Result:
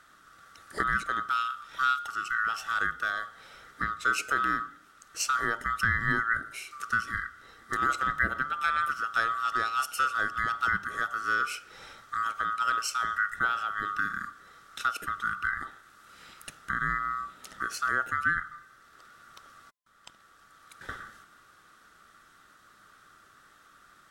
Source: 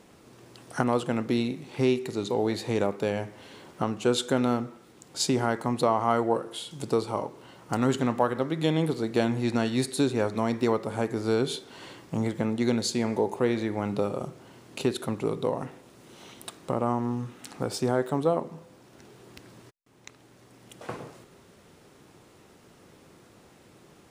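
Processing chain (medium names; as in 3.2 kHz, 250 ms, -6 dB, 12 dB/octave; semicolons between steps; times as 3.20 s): split-band scrambler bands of 1 kHz; trim -3 dB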